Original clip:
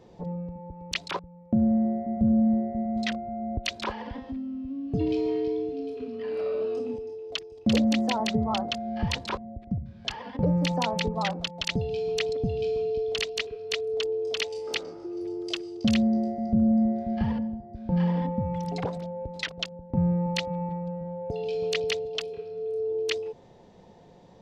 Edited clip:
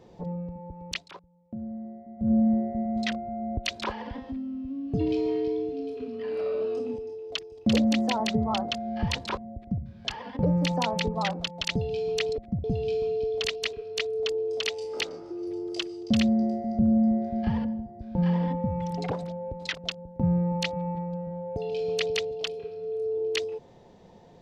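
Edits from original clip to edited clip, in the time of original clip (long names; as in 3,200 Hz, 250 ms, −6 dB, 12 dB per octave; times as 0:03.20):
0:00.90–0:02.32: duck −14 dB, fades 0.14 s
0:09.57–0:09.83: duplicate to 0:12.38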